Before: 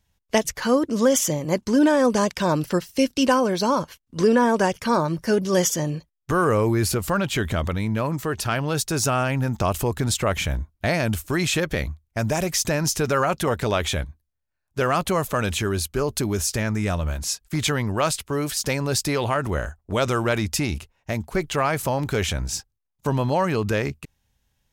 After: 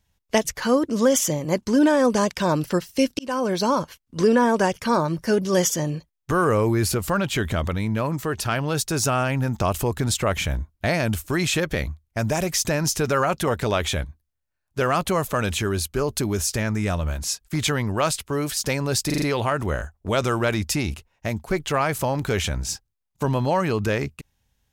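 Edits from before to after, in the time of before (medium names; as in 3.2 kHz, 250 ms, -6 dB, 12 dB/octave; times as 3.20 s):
3.19–3.52 s: fade in
19.06 s: stutter 0.04 s, 5 plays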